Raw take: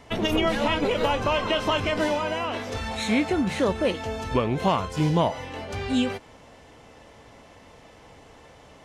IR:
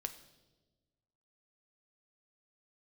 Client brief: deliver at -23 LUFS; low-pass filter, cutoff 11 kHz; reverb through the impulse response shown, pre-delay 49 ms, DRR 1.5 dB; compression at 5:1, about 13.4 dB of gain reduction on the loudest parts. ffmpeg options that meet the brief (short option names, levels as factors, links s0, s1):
-filter_complex "[0:a]lowpass=11000,acompressor=threshold=0.02:ratio=5,asplit=2[s0][s1];[1:a]atrim=start_sample=2205,adelay=49[s2];[s1][s2]afir=irnorm=-1:irlink=0,volume=1[s3];[s0][s3]amix=inputs=2:normalize=0,volume=3.55"